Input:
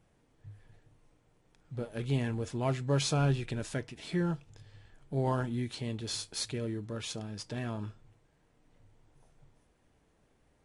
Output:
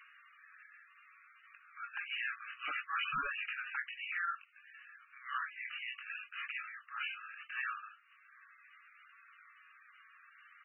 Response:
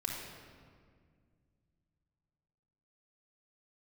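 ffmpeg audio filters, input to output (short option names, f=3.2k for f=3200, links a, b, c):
-af "afftfilt=real='re*between(b*sr/4096,1100,3000)':imag='im*between(b*sr/4096,1100,3000)':win_size=4096:overlap=0.75,acompressor=mode=upward:threshold=-60dB:ratio=2.5,aresample=16000,aeval=exprs='0.0106*(abs(mod(val(0)/0.0106+3,4)-2)-1)':c=same,aresample=44100,flanger=delay=18.5:depth=6.4:speed=0.62,volume=13dB" -ar 24000 -c:a libmp3lame -b:a 8k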